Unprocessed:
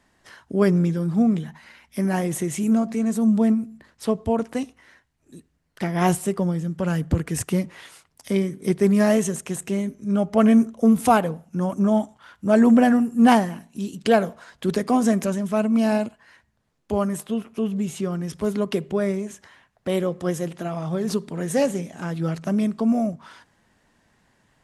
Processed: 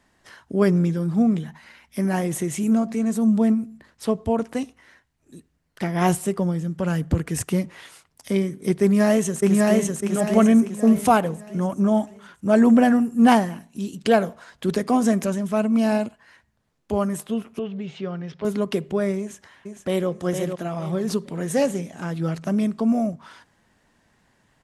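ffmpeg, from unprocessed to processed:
-filter_complex "[0:a]asplit=2[a][b];[b]afade=t=in:st=8.82:d=0.01,afade=t=out:st=9.95:d=0.01,aecho=0:1:600|1200|1800|2400|3000:0.944061|0.377624|0.15105|0.0604199|0.024168[c];[a][c]amix=inputs=2:normalize=0,asettb=1/sr,asplit=3[d][e][f];[d]atrim=end=17.594[g];[e]atrim=start=17.59:end=18.45,asetpts=PTS-STARTPTS,afade=t=in:d=0.004:c=qsin,afade=t=out:st=0.856:d=0.004:c=qsin,highpass=150,equalizer=f=220:t=q:w=4:g=-7,equalizer=f=320:t=q:w=4:g=-8,equalizer=f=1.1k:t=q:w=4:g=-4,lowpass=f=4.1k:w=0.5412,lowpass=f=4.1k:w=1.3066[h];[f]atrim=start=18.446[i];[g][h]acrossfade=d=0.004:c1=hsin:c2=qsin[j];[j][i]acrossfade=d=0.004:c1=qsin:c2=hsin,asplit=2[k][l];[l]afade=t=in:st=19.19:d=0.01,afade=t=out:st=20.09:d=0.01,aecho=0:1:460|920|1380|1840:0.501187|0.150356|0.0451069|0.0135321[m];[k][m]amix=inputs=2:normalize=0"

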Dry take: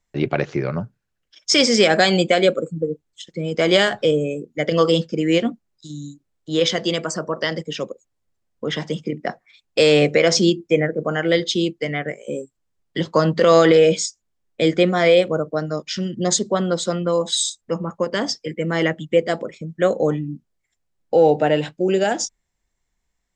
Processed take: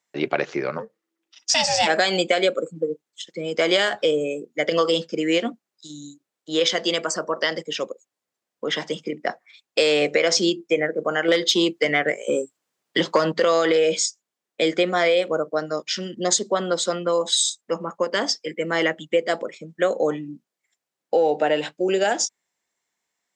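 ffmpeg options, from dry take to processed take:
-filter_complex "[0:a]asplit=3[a][b][c];[a]afade=t=out:st=0.77:d=0.02[d];[b]aeval=exprs='val(0)*sin(2*PI*330*n/s)':c=same,afade=t=in:st=0.77:d=0.02,afade=t=out:st=1.86:d=0.02[e];[c]afade=t=in:st=1.86:d=0.02[f];[d][e][f]amix=inputs=3:normalize=0,asettb=1/sr,asplit=3[g][h][i];[g]atrim=end=11.284[j];[h]atrim=start=11.28:end=13.32,asetpts=PTS-STARTPTS,afade=t=in:d=0.004:c=qsin,afade=t=out:st=2.036:d=0.004:c=qsin,acontrast=74[k];[i]atrim=start=13.316[l];[j][k]acrossfade=d=0.004:c1=hsin:c2=qsin[m];[m][l]acrossfade=d=0.004:c1=qsin:c2=hsin,highpass=220,lowshelf=f=300:g=-9,acompressor=threshold=-17dB:ratio=6,volume=2dB"

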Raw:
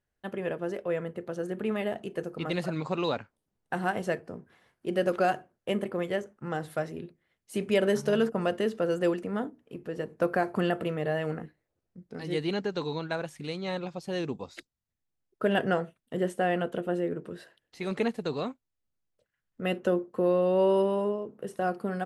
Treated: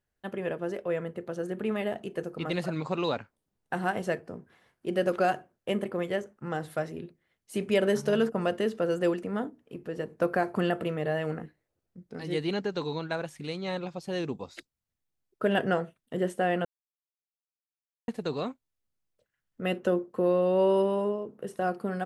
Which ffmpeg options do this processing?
-filter_complex "[0:a]asplit=3[a][b][c];[a]atrim=end=16.65,asetpts=PTS-STARTPTS,afade=t=out:st=16.646:d=0.004:c=hsin[d];[b]atrim=start=16.65:end=18.08,asetpts=PTS-STARTPTS,volume=0[e];[c]atrim=start=18.08,asetpts=PTS-STARTPTS,afade=t=in:d=0.004:c=hsin[f];[d][e][f]concat=n=3:v=0:a=1"

